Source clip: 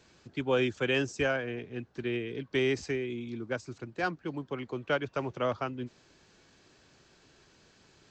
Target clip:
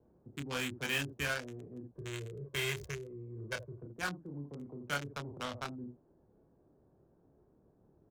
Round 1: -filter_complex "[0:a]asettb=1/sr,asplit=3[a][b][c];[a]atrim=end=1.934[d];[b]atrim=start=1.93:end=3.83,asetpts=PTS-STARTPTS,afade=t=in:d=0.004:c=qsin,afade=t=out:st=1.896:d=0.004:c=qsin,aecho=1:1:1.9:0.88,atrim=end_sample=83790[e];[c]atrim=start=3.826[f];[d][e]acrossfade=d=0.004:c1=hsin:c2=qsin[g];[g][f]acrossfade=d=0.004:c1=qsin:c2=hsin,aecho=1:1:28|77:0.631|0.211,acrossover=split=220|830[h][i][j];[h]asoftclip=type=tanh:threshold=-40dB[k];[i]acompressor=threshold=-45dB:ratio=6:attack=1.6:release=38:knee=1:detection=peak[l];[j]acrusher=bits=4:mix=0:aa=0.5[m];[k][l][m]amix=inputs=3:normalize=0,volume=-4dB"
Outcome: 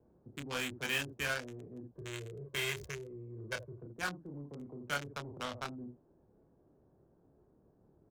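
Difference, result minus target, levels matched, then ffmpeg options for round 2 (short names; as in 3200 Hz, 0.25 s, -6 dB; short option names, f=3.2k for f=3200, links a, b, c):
soft clip: distortion +15 dB
-filter_complex "[0:a]asettb=1/sr,asplit=3[a][b][c];[a]atrim=end=1.934[d];[b]atrim=start=1.93:end=3.83,asetpts=PTS-STARTPTS,afade=t=in:d=0.004:c=qsin,afade=t=out:st=1.896:d=0.004:c=qsin,aecho=1:1:1.9:0.88,atrim=end_sample=83790[e];[c]atrim=start=3.826[f];[d][e]acrossfade=d=0.004:c1=hsin:c2=qsin[g];[g][f]acrossfade=d=0.004:c1=qsin:c2=hsin,aecho=1:1:28|77:0.631|0.211,acrossover=split=220|830[h][i][j];[h]asoftclip=type=tanh:threshold=-28.5dB[k];[i]acompressor=threshold=-45dB:ratio=6:attack=1.6:release=38:knee=1:detection=peak[l];[j]acrusher=bits=4:mix=0:aa=0.5[m];[k][l][m]amix=inputs=3:normalize=0,volume=-4dB"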